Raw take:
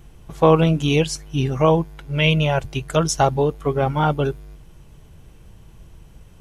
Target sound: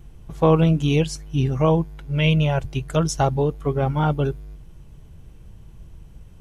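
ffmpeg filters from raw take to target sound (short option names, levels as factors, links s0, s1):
-af "lowshelf=f=280:g=7.5,volume=0.562"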